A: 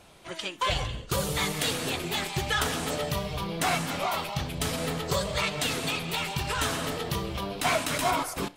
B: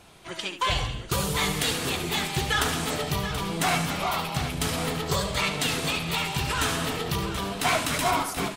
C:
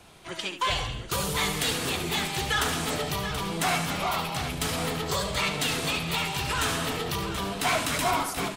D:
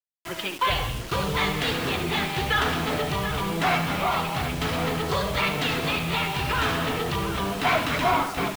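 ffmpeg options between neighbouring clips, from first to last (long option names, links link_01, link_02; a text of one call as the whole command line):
ffmpeg -i in.wav -filter_complex "[0:a]equalizer=frequency=570:width_type=o:width=0.32:gain=-5.5,asplit=2[link_01][link_02];[link_02]aecho=0:1:72|730:0.316|0.299[link_03];[link_01][link_03]amix=inputs=2:normalize=0,volume=2dB" out.wav
ffmpeg -i in.wav -filter_complex "[0:a]acrossover=split=390|550|3100[link_01][link_02][link_03][link_04];[link_01]alimiter=level_in=3dB:limit=-24dB:level=0:latency=1,volume=-3dB[link_05];[link_05][link_02][link_03][link_04]amix=inputs=4:normalize=0,asoftclip=type=tanh:threshold=-16dB" out.wav
ffmpeg -i in.wav -af "lowpass=3200,acrusher=bits=6:mix=0:aa=0.000001,volume=4dB" out.wav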